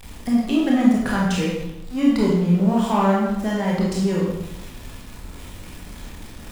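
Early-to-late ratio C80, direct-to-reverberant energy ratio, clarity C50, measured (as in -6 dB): 4.0 dB, -4.5 dB, 1.0 dB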